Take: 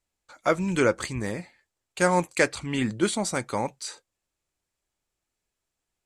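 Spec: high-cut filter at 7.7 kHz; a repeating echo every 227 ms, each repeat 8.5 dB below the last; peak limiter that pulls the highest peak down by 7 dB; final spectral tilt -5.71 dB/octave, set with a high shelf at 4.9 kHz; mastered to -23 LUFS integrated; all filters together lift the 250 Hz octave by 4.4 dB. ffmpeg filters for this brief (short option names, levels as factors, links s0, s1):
-af "lowpass=7700,equalizer=f=250:t=o:g=6,highshelf=f=4900:g=-8,alimiter=limit=0.224:level=0:latency=1,aecho=1:1:227|454|681|908:0.376|0.143|0.0543|0.0206,volume=1.5"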